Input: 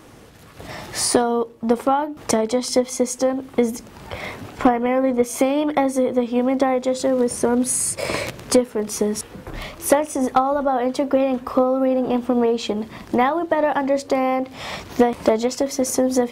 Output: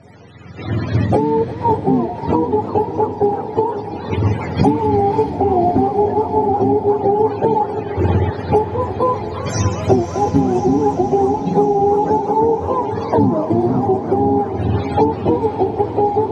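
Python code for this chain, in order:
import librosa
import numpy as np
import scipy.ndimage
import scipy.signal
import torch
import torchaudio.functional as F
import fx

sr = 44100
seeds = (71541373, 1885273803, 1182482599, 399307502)

y = fx.octave_mirror(x, sr, pivot_hz=460.0)
y = fx.recorder_agc(y, sr, target_db=-9.5, rise_db_per_s=13.0, max_gain_db=30)
y = scipy.signal.sosfilt(scipy.signal.butter(2, 11000.0, 'lowpass', fs=sr, output='sos'), y)
y = fx.echo_diffused(y, sr, ms=596, feedback_pct=63, wet_db=-10.5)
y = fx.echo_warbled(y, sr, ms=346, feedback_pct=68, rate_hz=2.8, cents=187, wet_db=-16.0)
y = y * 10.0 ** (3.0 / 20.0)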